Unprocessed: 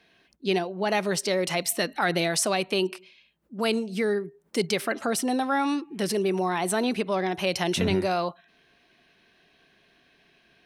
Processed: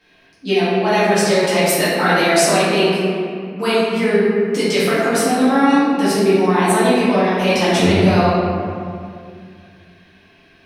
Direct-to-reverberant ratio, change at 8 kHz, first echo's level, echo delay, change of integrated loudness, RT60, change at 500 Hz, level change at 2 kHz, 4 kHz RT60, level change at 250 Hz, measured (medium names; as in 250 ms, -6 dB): -12.0 dB, +7.5 dB, no echo, no echo, +10.5 dB, 2.2 s, +11.5 dB, +11.0 dB, 1.3 s, +12.0 dB